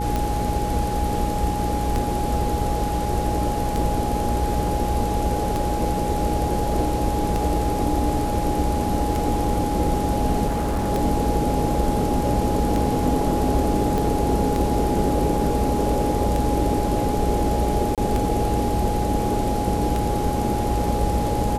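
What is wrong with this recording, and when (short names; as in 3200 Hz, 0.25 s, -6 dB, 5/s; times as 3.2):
hum 60 Hz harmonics 8 -27 dBFS
tick 33 1/3 rpm -11 dBFS
tone 830 Hz -26 dBFS
10.47–10.9 clipped -19.5 dBFS
13.98 pop
17.95–17.98 gap 27 ms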